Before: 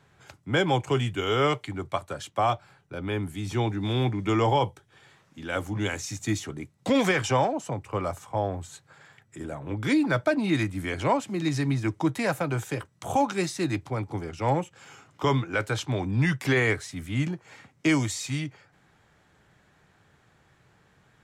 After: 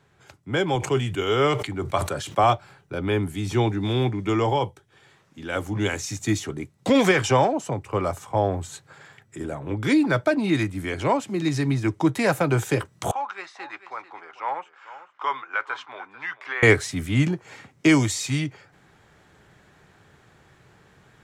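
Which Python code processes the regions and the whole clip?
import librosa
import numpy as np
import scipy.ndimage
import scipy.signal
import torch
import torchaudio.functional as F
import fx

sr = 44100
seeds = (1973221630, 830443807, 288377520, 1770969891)

y = fx.chain(x, sr, fx.highpass(hz=62.0, slope=12),
    fx.sustainer(db_per_s=81.0), at=(0.75, 2.44))
y = fx.chain(y, sr, fx.ladder_bandpass(hz=1400.0, resonance_pct=35),
    fx.echo_single(ms=442, db=-15.5), at=(13.11, 16.63))
y = fx.peak_eq(y, sr, hz=390.0, db=3.5, octaves=0.41)
y = fx.rider(y, sr, range_db=10, speed_s=2.0)
y = y * 10.0 ** (2.5 / 20.0)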